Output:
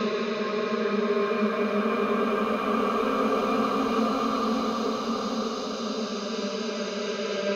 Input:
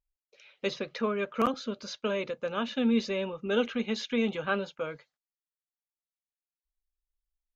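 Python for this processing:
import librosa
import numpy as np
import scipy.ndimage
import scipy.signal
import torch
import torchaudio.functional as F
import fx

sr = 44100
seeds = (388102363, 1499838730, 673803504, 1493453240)

y = fx.reverse_delay(x, sr, ms=223, wet_db=-14.0)
y = fx.paulstretch(y, sr, seeds[0], factor=6.7, window_s=1.0, from_s=0.91)
y = F.gain(torch.from_numpy(y), 4.5).numpy()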